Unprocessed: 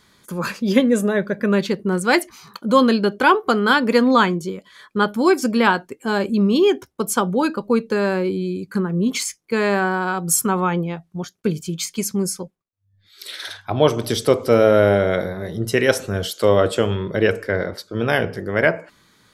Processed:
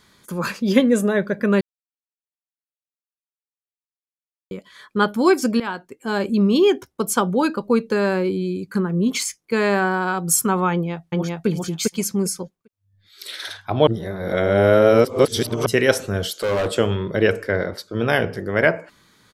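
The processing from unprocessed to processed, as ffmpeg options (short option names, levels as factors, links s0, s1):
-filter_complex "[0:a]asplit=2[s0][s1];[s1]afade=t=in:st=10.72:d=0.01,afade=t=out:st=11.47:d=0.01,aecho=0:1:400|800|1200:1|0.15|0.0225[s2];[s0][s2]amix=inputs=2:normalize=0,asettb=1/sr,asplit=3[s3][s4][s5];[s3]atrim=end=16.244[s6];[s4]atrim=start=16.24:end=16.77,asetpts=PTS-STARTPTS,afade=t=in:d=0.004:c=qsin,afade=t=out:st=0.526:d=0.004:c=qsin,asoftclip=type=hard:threshold=0.126[s7];[s5]atrim=start=16.766[s8];[s6][s7]acrossfade=d=0.004:c1=hsin:c2=qsin[s9];[s9][s8]acrossfade=d=0.004:c1=qsin:c2=hsin,asplit=6[s10][s11][s12][s13][s14][s15];[s10]atrim=end=1.61,asetpts=PTS-STARTPTS,afade=t=out:st=1.606:d=0.004:c=hsin[s16];[s11]atrim=start=1.61:end=4.51,asetpts=PTS-STARTPTS,volume=0[s17];[s12]atrim=start=4.51:end=5.6,asetpts=PTS-STARTPTS,afade=t=in:d=0.004:c=hsin,afade=t=out:st=1.086:d=0.004:c=hsin:silence=0.16788[s18];[s13]atrim=start=5.6:end=13.872,asetpts=PTS-STARTPTS,afade=t=in:d=0.74:silence=0.16788[s19];[s14]atrim=start=13.868:end=15.662,asetpts=PTS-STARTPTS,areverse[s20];[s15]atrim=start=15.658[s21];[s16][s17][s18][s19]concat=n=4:v=0:a=1[s22];[s22][s20]acrossfade=d=0.004:c1=hsin:c2=hsin[s23];[s23][s21]acrossfade=d=0.004:c1=hsin:c2=hsin"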